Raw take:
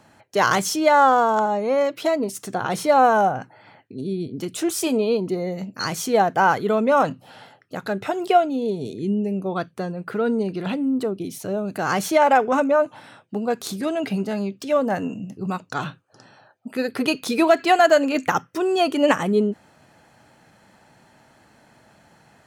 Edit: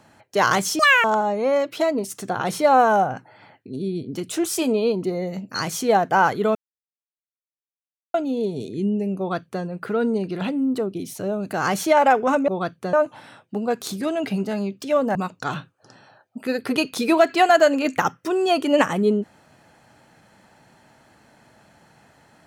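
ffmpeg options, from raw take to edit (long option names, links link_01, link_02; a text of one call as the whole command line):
ffmpeg -i in.wav -filter_complex "[0:a]asplit=8[link_01][link_02][link_03][link_04][link_05][link_06][link_07][link_08];[link_01]atrim=end=0.794[link_09];[link_02]atrim=start=0.79:end=1.29,asetpts=PTS-STARTPTS,asetrate=87759,aresample=44100,atrim=end_sample=11080,asetpts=PTS-STARTPTS[link_10];[link_03]atrim=start=1.286:end=6.8,asetpts=PTS-STARTPTS,afade=type=out:start_time=5.51:duration=0.004:curve=hsin[link_11];[link_04]atrim=start=6.8:end=8.39,asetpts=PTS-STARTPTS,volume=0[link_12];[link_05]atrim=start=8.39:end=12.732,asetpts=PTS-STARTPTS,afade=type=in:duration=0.004:curve=hsin[link_13];[link_06]atrim=start=9.428:end=9.882[link_14];[link_07]atrim=start=12.728:end=14.952[link_15];[link_08]atrim=start=15.448[link_16];[link_09][link_10]acrossfade=duration=0.004:curve1=hsin:curve2=hsin[link_17];[link_11][link_12][link_13]concat=n=3:v=0:a=1[link_18];[link_17][link_18]acrossfade=duration=0.004:curve1=hsin:curve2=hsin[link_19];[link_19][link_14]acrossfade=duration=0.004:curve1=hsin:curve2=hsin[link_20];[link_20][link_15]acrossfade=duration=0.004:curve1=hsin:curve2=hsin[link_21];[link_21][link_16]acrossfade=duration=0.004:curve1=hsin:curve2=hsin" out.wav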